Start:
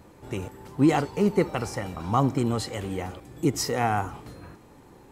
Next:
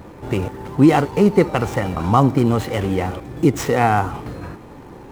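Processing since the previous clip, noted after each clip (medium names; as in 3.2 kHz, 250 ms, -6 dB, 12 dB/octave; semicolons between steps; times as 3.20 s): median filter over 9 samples; in parallel at +1 dB: compression, threshold -30 dBFS, peak gain reduction 14.5 dB; on the sum: trim +6 dB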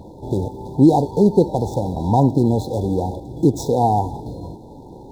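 brick-wall FIR band-stop 990–3400 Hz; treble shelf 6.1 kHz -6 dB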